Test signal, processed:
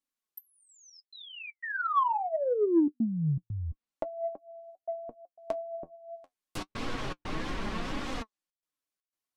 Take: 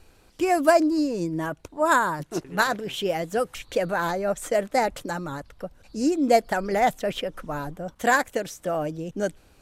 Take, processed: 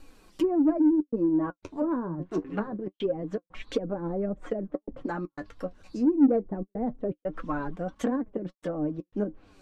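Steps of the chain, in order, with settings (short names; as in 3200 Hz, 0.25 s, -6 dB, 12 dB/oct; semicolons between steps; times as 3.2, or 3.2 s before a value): treble ducked by the level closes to 380 Hz, closed at -21.5 dBFS; dynamic EQ 690 Hz, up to -6 dB, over -45 dBFS, Q 6.4; flange 0.25 Hz, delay 3.4 ms, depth 9 ms, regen +48%; step gate "xxxxxxxx.xxx.xx" 120 bpm -60 dB; small resonant body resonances 300/1100 Hz, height 10 dB, ringing for 70 ms; flange 1.6 Hz, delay 3.6 ms, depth 2.3 ms, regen +53%; in parallel at -4 dB: soft clip -26.5 dBFS; on the sum: gain +3 dB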